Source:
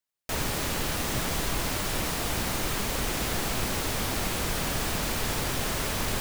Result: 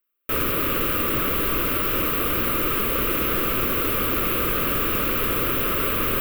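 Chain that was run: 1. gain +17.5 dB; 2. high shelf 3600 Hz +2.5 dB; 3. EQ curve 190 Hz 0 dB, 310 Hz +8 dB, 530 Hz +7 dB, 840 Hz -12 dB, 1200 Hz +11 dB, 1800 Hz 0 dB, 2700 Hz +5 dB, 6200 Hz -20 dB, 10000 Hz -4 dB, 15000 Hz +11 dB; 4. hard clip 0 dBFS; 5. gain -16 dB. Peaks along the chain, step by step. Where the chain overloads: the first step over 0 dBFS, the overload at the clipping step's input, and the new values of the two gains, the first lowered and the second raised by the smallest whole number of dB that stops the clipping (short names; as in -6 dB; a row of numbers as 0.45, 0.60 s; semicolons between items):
+2.0, +2.5, +6.5, 0.0, -16.0 dBFS; step 1, 6.5 dB; step 1 +10.5 dB, step 5 -9 dB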